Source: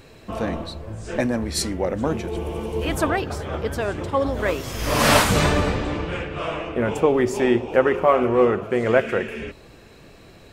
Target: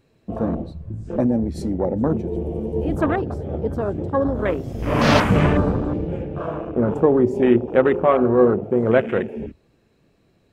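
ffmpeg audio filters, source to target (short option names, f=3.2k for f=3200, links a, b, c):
-af "afwtdn=0.0501,equalizer=f=190:t=o:w=2.6:g=7.5,volume=-2dB"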